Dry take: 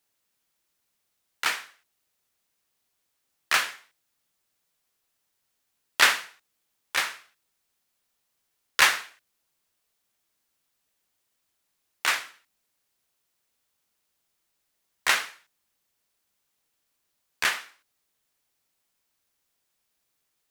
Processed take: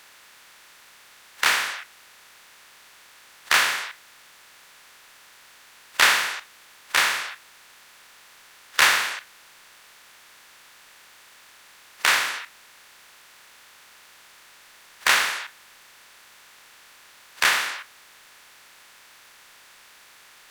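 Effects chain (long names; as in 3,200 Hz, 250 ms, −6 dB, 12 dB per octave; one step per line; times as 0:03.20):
compressor on every frequency bin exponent 0.4
noise reduction from a noise print of the clip's start 10 dB
level −1 dB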